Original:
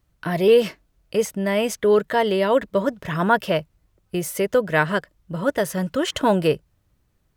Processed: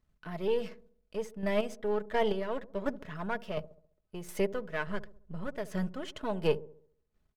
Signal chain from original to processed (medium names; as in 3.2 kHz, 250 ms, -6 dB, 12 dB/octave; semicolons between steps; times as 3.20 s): partial rectifier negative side -7 dB; 4.87–5.47 s: bass shelf 130 Hz +11.5 dB; square tremolo 1.4 Hz, depth 60%, duty 25%; treble shelf 7.7 kHz -11 dB; comb 4.7 ms, depth 39%; feedback echo behind a low-pass 68 ms, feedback 46%, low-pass 570 Hz, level -14 dB; trim -6.5 dB